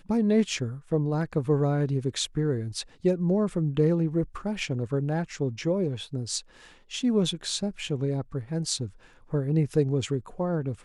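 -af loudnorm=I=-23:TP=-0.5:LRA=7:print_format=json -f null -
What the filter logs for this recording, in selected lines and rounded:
"input_i" : "-27.9",
"input_tp" : "-10.8",
"input_lra" : "3.4",
"input_thresh" : "-38.1",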